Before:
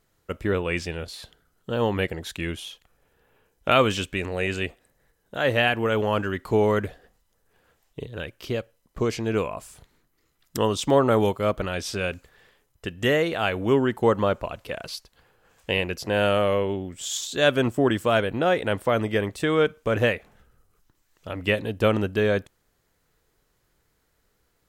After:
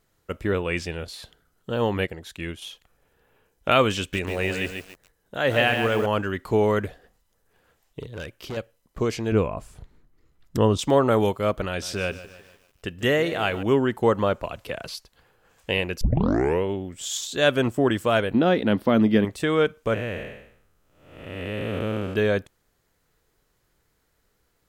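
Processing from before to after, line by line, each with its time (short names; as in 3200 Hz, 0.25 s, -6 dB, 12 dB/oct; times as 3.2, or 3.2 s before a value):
1.98–2.62 upward expander, over -34 dBFS
3.99–6.06 lo-fi delay 0.141 s, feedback 35%, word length 7-bit, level -5.5 dB
8.01–8.57 overloaded stage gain 29.5 dB
9.32–10.79 tilt -2.5 dB/oct
11.67–13.63 lo-fi delay 0.149 s, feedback 55%, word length 8-bit, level -15 dB
14.43–14.95 three-band squash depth 40%
16.01 tape start 0.63 s
18.34–19.25 EQ curve 140 Hz 0 dB, 220 Hz +13 dB, 470 Hz 0 dB, 2400 Hz -2 dB, 4600 Hz +4 dB, 8000 Hz -14 dB, 13000 Hz -2 dB
19.94–22.16 time blur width 0.393 s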